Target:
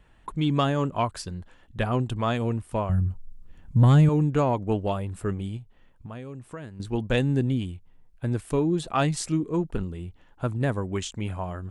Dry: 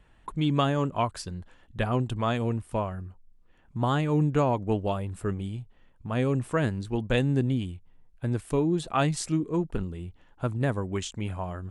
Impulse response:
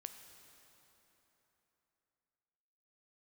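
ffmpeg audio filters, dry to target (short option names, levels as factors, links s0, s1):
-filter_complex "[0:a]asettb=1/sr,asplit=3[s0][s1][s2];[s0]atrim=end=2.894[s3];[s1]atrim=start=2.89:end=4.09,asetpts=PTS-STARTPTS,afade=t=in:d=0.004:c=qsin,afade=t=out:st=1.196:d=0.004:c=qsin,bass=f=250:g=14,treble=f=4000:g=7[s4];[s2]atrim=start=4.086[s5];[s3][s4]acrossfade=d=0.004:c1=hsin:c2=qsin[s6];[s6][s5]acrossfade=d=0.004:c1=qsin:c2=hsin,asettb=1/sr,asplit=3[s7][s8][s9];[s7]atrim=end=5.574[s10];[s8]atrim=start=5.57:end=6.8,asetpts=PTS-STARTPTS,afade=t=in:d=0.004:c=qsin,afade=t=out:st=1.226:d=0.004:c=qsin,acompressor=threshold=0.01:ratio=4[s11];[s9]atrim=start=6.796[s12];[s10][s11]acrossfade=d=0.004:c1=hsin:c2=qsin[s13];[s13][s12]acrossfade=d=0.004:c1=qsin:c2=hsin,asoftclip=type=tanh:threshold=0.299,volume=1.19"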